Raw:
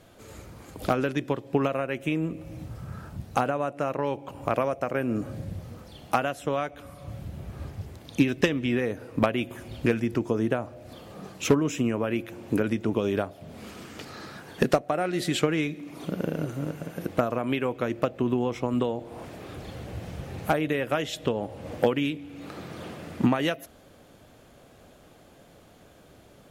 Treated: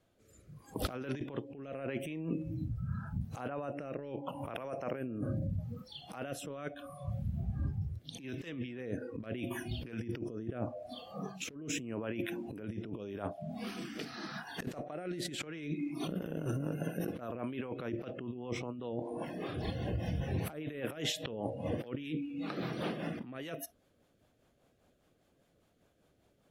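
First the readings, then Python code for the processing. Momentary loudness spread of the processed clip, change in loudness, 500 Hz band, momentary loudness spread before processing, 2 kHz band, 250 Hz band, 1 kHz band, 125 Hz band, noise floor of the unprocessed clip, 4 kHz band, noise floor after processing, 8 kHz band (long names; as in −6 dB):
6 LU, −11.5 dB, −12.5 dB, 16 LU, −11.5 dB, −10.5 dB, −14.5 dB, −6.0 dB, −54 dBFS, −7.0 dB, −72 dBFS, −6.0 dB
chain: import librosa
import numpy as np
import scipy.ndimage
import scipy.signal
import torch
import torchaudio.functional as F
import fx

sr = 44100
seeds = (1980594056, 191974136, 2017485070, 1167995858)

y = fx.noise_reduce_blind(x, sr, reduce_db=20)
y = fx.over_compress(y, sr, threshold_db=-35.0, ratio=-1.0)
y = fx.rotary_switch(y, sr, hz=0.8, then_hz=5.0, switch_at_s=15.11)
y = F.gain(torch.from_numpy(y), -2.0).numpy()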